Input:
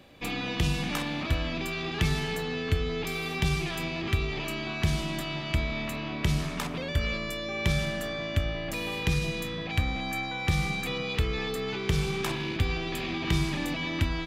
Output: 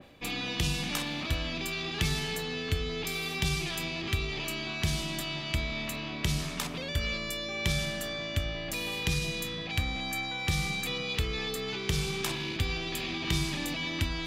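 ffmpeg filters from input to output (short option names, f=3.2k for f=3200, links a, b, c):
-af "areverse,acompressor=mode=upward:threshold=-31dB:ratio=2.5,areverse,adynamicequalizer=threshold=0.00398:dfrequency=2700:dqfactor=0.7:tfrequency=2700:tqfactor=0.7:attack=5:release=100:ratio=0.375:range=4:mode=boostabove:tftype=highshelf,volume=-4dB"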